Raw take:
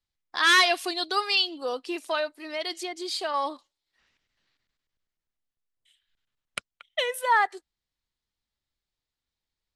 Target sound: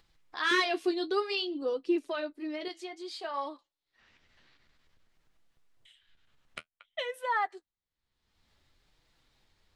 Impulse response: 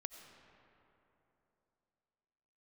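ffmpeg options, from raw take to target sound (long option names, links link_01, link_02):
-filter_complex "[0:a]asettb=1/sr,asplit=3[link_01][link_02][link_03];[link_01]atrim=end=0.514[link_04];[link_02]atrim=start=0.51:end=2.68,asetpts=PTS-STARTPTS,afade=type=in:duration=0.004:curve=qsin,afade=type=out:start_time=2.166:duration=0.004:curve=qsin,lowshelf=frequency=520:width_type=q:width=1.5:gain=9[link_05];[link_03]atrim=start=2.676[link_06];[link_04][link_05]acrossfade=duration=0.004:curve1=hsin:curve2=qsin[link_07];[link_07][link_06]acrossfade=duration=0.004:curve1=qsin:curve2=hsin,flanger=delay=5.9:depth=8:regen=-38:speed=0.55:shape=sinusoidal,aemphasis=mode=reproduction:type=50kf,acompressor=mode=upward:threshold=-44dB:ratio=2.5,volume=-3dB"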